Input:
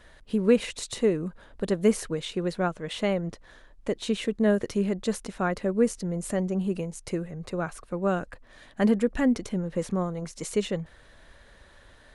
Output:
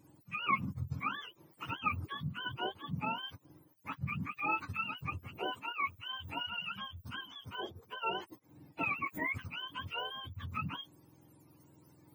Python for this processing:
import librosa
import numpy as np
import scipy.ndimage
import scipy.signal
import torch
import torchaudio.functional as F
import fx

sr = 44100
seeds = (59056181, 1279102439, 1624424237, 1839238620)

y = fx.octave_mirror(x, sr, pivot_hz=730.0)
y = fx.highpass(y, sr, hz=410.0, slope=6, at=(5.46, 6.15))
y = y * librosa.db_to_amplitude(-8.0)